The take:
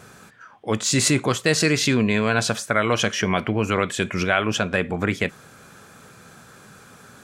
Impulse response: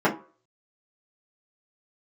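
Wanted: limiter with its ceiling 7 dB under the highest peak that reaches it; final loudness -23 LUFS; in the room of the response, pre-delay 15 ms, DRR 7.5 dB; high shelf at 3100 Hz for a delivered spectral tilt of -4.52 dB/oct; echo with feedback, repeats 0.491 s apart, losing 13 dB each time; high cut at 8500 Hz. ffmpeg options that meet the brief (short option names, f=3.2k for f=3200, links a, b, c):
-filter_complex "[0:a]lowpass=8.5k,highshelf=f=3.1k:g=-3,alimiter=limit=-11.5dB:level=0:latency=1,aecho=1:1:491|982|1473:0.224|0.0493|0.0108,asplit=2[a][b];[1:a]atrim=start_sample=2205,adelay=15[c];[b][c]afir=irnorm=-1:irlink=0,volume=-25dB[d];[a][d]amix=inputs=2:normalize=0"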